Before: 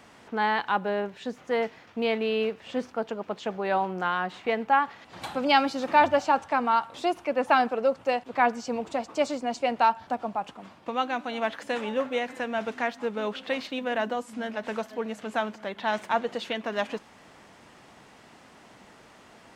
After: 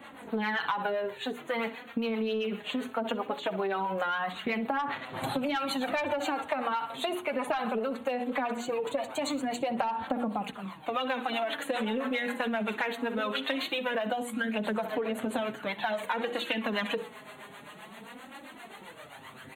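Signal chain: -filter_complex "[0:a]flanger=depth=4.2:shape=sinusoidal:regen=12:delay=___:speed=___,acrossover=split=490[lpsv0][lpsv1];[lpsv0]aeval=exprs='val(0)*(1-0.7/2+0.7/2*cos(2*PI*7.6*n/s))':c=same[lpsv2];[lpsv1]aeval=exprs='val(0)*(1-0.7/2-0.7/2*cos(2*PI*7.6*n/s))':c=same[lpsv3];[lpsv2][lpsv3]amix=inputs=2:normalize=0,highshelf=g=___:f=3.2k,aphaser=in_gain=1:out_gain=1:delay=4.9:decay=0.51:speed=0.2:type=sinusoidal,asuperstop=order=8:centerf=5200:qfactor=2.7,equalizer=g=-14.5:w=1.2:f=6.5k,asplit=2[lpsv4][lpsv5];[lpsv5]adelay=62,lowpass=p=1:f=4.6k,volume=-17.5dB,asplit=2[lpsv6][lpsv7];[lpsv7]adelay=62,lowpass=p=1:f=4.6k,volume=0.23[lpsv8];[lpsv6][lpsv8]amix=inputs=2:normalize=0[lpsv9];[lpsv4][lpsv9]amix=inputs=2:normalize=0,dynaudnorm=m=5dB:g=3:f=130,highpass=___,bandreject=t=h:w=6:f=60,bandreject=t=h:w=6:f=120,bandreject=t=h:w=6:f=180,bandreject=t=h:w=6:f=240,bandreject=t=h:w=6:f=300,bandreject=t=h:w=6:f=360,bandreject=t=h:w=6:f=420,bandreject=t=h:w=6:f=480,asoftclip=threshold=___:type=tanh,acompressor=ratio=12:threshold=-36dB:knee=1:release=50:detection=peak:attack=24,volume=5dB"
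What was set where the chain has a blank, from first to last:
3.6, 0.49, 10.5, 87, -12.5dB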